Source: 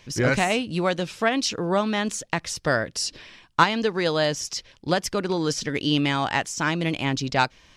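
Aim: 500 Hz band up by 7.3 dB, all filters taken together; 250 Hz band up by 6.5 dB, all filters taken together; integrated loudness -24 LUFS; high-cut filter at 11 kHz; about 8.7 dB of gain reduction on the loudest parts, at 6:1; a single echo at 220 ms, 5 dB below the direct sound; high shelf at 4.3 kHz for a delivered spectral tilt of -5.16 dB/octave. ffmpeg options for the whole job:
-af "lowpass=11000,equalizer=f=250:t=o:g=6,equalizer=f=500:t=o:g=7.5,highshelf=f=4300:g=-5,acompressor=threshold=0.1:ratio=6,aecho=1:1:220:0.562,volume=1.06"

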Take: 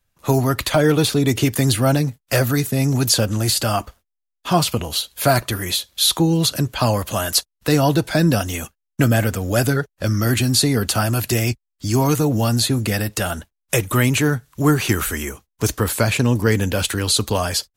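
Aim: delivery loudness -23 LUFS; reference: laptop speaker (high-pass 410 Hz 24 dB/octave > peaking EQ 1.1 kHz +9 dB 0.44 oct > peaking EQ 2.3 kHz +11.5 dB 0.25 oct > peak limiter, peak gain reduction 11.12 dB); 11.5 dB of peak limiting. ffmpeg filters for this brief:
-af "alimiter=limit=0.178:level=0:latency=1,highpass=f=410:w=0.5412,highpass=f=410:w=1.3066,equalizer=f=1100:t=o:w=0.44:g=9,equalizer=f=2300:t=o:w=0.25:g=11.5,volume=2,alimiter=limit=0.237:level=0:latency=1"

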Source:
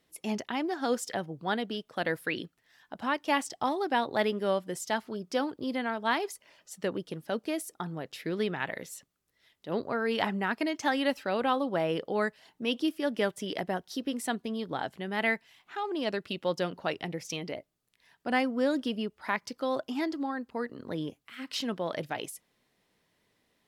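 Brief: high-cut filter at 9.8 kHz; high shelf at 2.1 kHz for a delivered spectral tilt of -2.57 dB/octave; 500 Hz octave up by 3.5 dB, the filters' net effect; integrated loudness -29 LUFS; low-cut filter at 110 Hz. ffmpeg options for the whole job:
-af "highpass=110,lowpass=9800,equalizer=f=500:t=o:g=4,highshelf=f=2100:g=3.5,volume=1.12"

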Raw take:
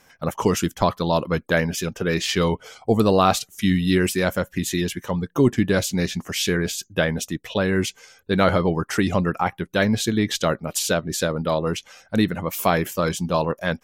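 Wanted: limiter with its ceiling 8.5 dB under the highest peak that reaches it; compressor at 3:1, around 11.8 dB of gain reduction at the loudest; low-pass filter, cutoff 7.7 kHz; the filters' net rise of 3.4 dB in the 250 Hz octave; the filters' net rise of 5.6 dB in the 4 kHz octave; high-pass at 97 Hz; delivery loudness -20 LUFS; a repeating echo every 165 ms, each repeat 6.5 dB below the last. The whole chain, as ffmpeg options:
-af "highpass=97,lowpass=7700,equalizer=f=250:t=o:g=5,equalizer=f=4000:t=o:g=7,acompressor=threshold=0.0447:ratio=3,alimiter=limit=0.126:level=0:latency=1,aecho=1:1:165|330|495|660|825|990:0.473|0.222|0.105|0.0491|0.0231|0.0109,volume=3.16"

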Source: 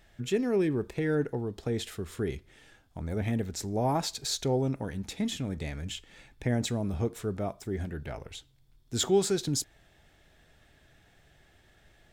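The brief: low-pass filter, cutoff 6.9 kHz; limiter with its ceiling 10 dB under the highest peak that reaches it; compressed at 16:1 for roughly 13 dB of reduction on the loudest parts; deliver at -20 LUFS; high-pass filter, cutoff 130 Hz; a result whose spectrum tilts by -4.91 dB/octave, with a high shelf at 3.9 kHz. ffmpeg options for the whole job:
-af "highpass=130,lowpass=6900,highshelf=f=3900:g=-4.5,acompressor=threshold=0.0251:ratio=16,volume=11.2,alimiter=limit=0.355:level=0:latency=1"

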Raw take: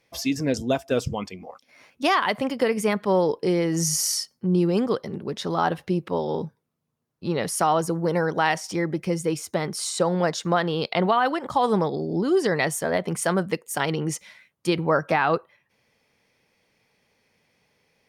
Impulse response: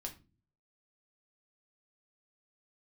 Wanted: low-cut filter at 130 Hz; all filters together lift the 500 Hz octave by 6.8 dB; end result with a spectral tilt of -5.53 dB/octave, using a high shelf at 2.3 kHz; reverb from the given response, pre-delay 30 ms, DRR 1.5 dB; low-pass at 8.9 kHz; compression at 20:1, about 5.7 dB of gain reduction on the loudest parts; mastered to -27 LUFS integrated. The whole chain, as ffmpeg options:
-filter_complex "[0:a]highpass=130,lowpass=8900,equalizer=f=500:t=o:g=8.5,highshelf=f=2300:g=-4.5,acompressor=threshold=0.158:ratio=20,asplit=2[s0][s1];[1:a]atrim=start_sample=2205,adelay=30[s2];[s1][s2]afir=irnorm=-1:irlink=0,volume=1.12[s3];[s0][s3]amix=inputs=2:normalize=0,volume=0.501"

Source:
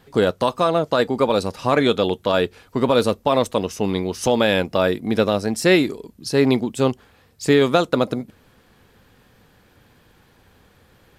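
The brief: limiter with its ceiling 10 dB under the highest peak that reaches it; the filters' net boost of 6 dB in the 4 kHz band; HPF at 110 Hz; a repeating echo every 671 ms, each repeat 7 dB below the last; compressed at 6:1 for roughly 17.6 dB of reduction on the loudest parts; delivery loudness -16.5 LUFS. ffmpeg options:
-af "highpass=110,equalizer=f=4000:t=o:g=7,acompressor=threshold=0.0282:ratio=6,alimiter=level_in=1.12:limit=0.0631:level=0:latency=1,volume=0.891,aecho=1:1:671|1342|2013|2684|3355:0.447|0.201|0.0905|0.0407|0.0183,volume=10.6"

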